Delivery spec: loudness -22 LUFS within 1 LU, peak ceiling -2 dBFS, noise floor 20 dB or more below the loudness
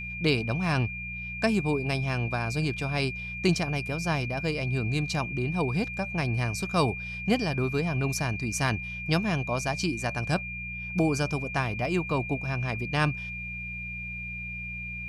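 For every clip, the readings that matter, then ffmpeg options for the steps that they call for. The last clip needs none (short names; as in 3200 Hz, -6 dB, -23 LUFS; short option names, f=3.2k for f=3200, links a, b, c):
hum 60 Hz; harmonics up to 180 Hz; hum level -38 dBFS; steady tone 2400 Hz; tone level -35 dBFS; loudness -28.5 LUFS; peak -9.5 dBFS; loudness target -22.0 LUFS
-> -af "bandreject=f=60:t=h:w=4,bandreject=f=120:t=h:w=4,bandreject=f=180:t=h:w=4"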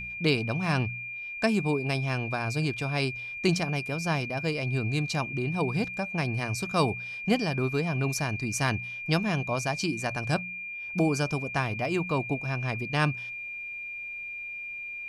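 hum none; steady tone 2400 Hz; tone level -35 dBFS
-> -af "bandreject=f=2.4k:w=30"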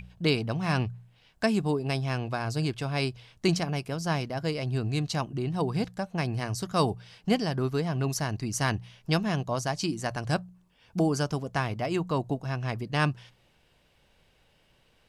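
steady tone none; loudness -29.5 LUFS; peak -10.0 dBFS; loudness target -22.0 LUFS
-> -af "volume=7.5dB"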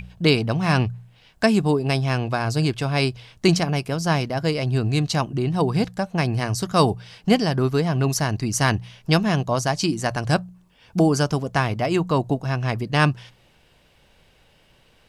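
loudness -22.0 LUFS; peak -2.5 dBFS; noise floor -58 dBFS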